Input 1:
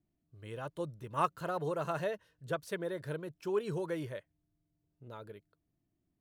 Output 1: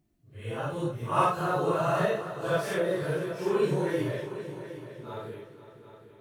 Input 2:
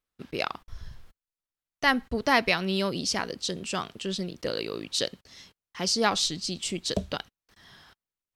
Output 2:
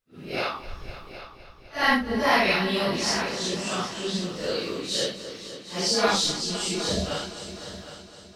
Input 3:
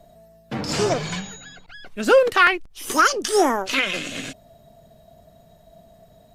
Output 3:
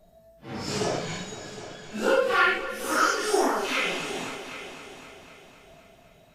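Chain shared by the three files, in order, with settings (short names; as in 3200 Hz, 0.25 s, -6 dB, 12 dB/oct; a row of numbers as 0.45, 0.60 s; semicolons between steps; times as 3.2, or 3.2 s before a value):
phase scrambler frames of 0.2 s; multi-head echo 0.255 s, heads all three, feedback 43%, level -16 dB; normalise peaks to -9 dBFS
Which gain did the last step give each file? +8.5, +2.5, -5.5 dB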